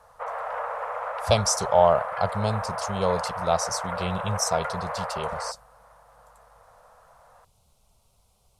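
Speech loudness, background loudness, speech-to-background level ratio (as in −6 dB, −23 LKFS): −26.0 LKFS, −32.0 LKFS, 6.0 dB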